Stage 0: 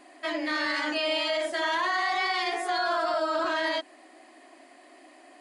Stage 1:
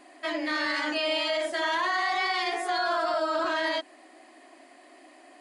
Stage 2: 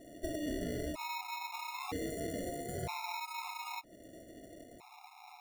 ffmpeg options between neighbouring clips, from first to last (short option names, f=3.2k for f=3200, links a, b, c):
-af anull
-af "acrusher=samples=28:mix=1:aa=0.000001,acompressor=threshold=-39dB:ratio=3,afftfilt=real='re*gt(sin(2*PI*0.52*pts/sr)*(1-2*mod(floor(b*sr/1024/700),2)),0)':imag='im*gt(sin(2*PI*0.52*pts/sr)*(1-2*mod(floor(b*sr/1024/700),2)),0)':win_size=1024:overlap=0.75,volume=2dB"